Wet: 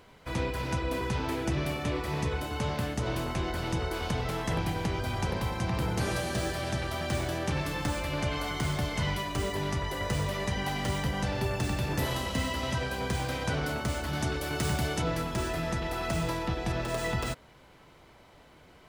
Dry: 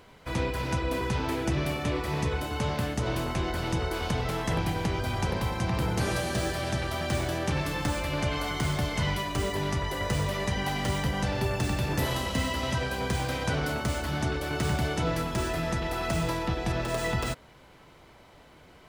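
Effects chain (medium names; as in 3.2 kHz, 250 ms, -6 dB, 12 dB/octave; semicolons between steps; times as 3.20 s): 14.13–15.02 s: treble shelf 5.1 kHz +7 dB; trim -2 dB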